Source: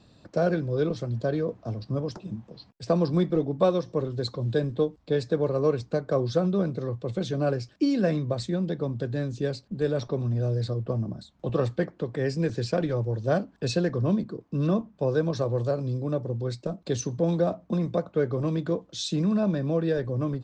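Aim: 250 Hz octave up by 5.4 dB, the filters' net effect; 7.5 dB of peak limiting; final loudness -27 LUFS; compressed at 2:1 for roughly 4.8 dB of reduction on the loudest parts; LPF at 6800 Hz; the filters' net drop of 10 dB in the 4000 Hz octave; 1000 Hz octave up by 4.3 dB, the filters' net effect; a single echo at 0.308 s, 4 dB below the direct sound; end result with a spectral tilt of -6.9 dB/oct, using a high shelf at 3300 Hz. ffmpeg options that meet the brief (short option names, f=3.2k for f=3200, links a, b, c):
-af "lowpass=6.8k,equalizer=f=250:t=o:g=7.5,equalizer=f=1k:t=o:g=6.5,highshelf=f=3.3k:g=-7.5,equalizer=f=4k:t=o:g=-6,acompressor=threshold=-22dB:ratio=2,alimiter=limit=-16.5dB:level=0:latency=1,aecho=1:1:308:0.631,volume=-1dB"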